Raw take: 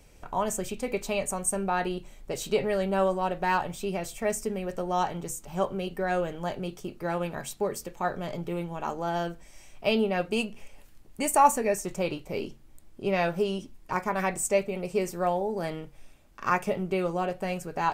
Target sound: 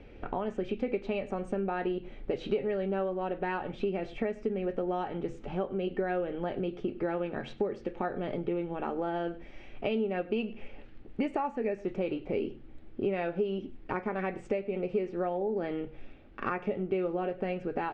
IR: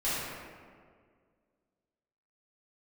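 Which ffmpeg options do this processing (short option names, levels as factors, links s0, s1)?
-filter_complex "[0:a]lowpass=f=3200:w=0.5412,lowpass=f=3200:w=1.3066,equalizer=f=320:w=0.47:g=8,asplit=2[s0][s1];[s1]aecho=0:1:101:0.0708[s2];[s0][s2]amix=inputs=2:normalize=0,acompressor=threshold=0.0282:ratio=5,equalizer=f=160:t=o:w=0.33:g=-10,equalizer=f=630:t=o:w=0.33:g=-5,equalizer=f=1000:t=o:w=0.33:g=-9,volume=1.5"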